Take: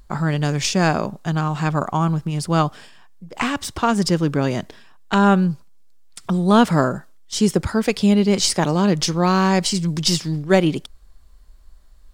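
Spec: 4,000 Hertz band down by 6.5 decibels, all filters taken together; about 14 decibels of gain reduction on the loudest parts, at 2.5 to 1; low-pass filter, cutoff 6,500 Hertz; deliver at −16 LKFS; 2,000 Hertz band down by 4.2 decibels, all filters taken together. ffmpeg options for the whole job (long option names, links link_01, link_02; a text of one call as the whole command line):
ffmpeg -i in.wav -af "lowpass=6500,equalizer=frequency=2000:width_type=o:gain=-4.5,equalizer=frequency=4000:width_type=o:gain=-6.5,acompressor=threshold=-33dB:ratio=2.5,volume=15.5dB" out.wav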